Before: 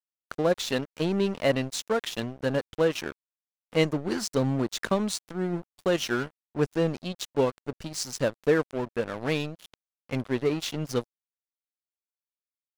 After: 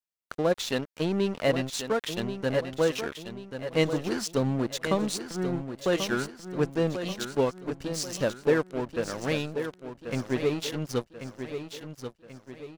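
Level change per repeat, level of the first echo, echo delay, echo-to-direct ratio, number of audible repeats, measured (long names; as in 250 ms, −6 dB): −7.0 dB, −9.0 dB, 1,086 ms, −8.0 dB, 4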